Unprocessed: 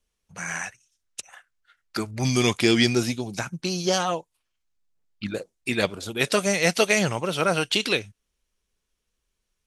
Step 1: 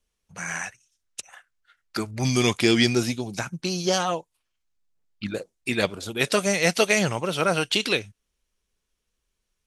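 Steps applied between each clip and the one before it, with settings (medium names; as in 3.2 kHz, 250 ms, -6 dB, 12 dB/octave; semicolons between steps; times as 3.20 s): no audible change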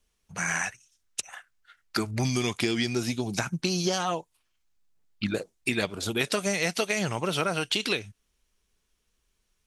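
peaking EQ 530 Hz -4 dB 0.23 oct; compression 10:1, threshold -27 dBFS, peak gain reduction 13 dB; trim +4 dB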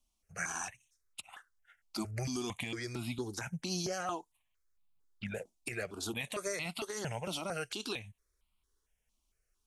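peak limiter -17.5 dBFS, peak gain reduction 7 dB; stepped phaser 4.4 Hz 450–1700 Hz; trim -4.5 dB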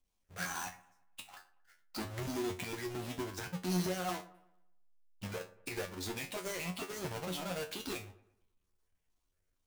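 square wave that keeps the level; feedback comb 91 Hz, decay 0.23 s, harmonics all, mix 90%; feedback echo behind a low-pass 115 ms, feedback 39%, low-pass 1.7 kHz, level -17 dB; trim +2 dB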